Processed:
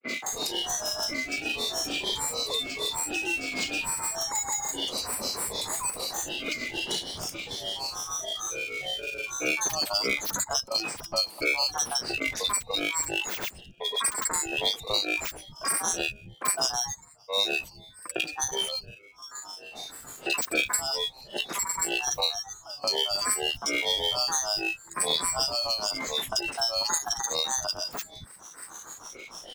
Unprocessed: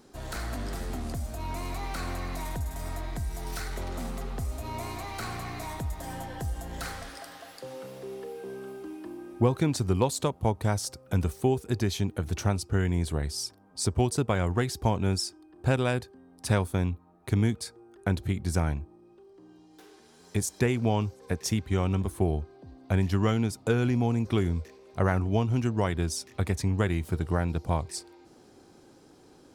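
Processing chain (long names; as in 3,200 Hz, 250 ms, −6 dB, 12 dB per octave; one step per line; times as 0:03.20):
neighbouring bands swapped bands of 4,000 Hz
downward expander −49 dBFS
parametric band 9,500 Hz +13.5 dB 0.88 octaves
in parallel at −5 dB: decimation without filtering 25×
on the sum: granular cloud 206 ms, grains 6.6 per second, pitch spread up and down by 12 semitones
three-band delay without the direct sound mids, highs, lows 40/270 ms, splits 160/1,800 Hz
multiband upward and downward compressor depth 70%
level −2 dB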